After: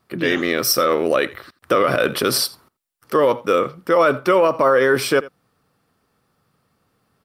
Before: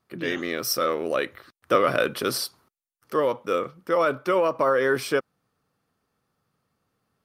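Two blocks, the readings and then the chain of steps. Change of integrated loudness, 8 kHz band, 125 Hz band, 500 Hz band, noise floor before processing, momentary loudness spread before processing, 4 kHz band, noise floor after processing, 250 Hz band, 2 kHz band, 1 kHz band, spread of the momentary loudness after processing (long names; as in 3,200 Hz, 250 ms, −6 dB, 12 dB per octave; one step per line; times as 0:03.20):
+6.5 dB, +8.5 dB, +7.5 dB, +6.5 dB, below −85 dBFS, 7 LU, +8.0 dB, −71 dBFS, +7.5 dB, +6.5 dB, +6.0 dB, 6 LU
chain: single-tap delay 84 ms −21.5 dB
brickwall limiter −15.5 dBFS, peak gain reduction 9 dB
notch filter 6,400 Hz, Q 15
level +9 dB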